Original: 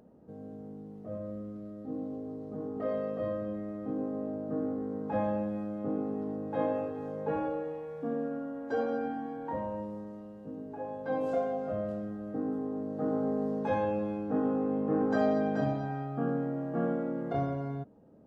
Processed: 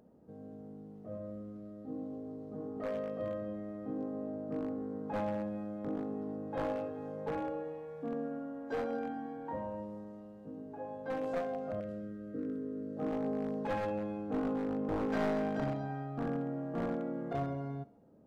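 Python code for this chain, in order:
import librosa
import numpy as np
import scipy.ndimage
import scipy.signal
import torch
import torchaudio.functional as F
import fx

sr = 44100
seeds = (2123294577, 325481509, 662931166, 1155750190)

y = np.minimum(x, 2.0 * 10.0 ** (-26.0 / 20.0) - x)
y = fx.cheby1_bandstop(y, sr, low_hz=530.0, high_hz=1400.0, order=2, at=(11.8, 12.97))
y = fx.echo_thinned(y, sr, ms=66, feedback_pct=61, hz=420.0, wet_db=-18.5)
y = y * 10.0 ** (-4.0 / 20.0)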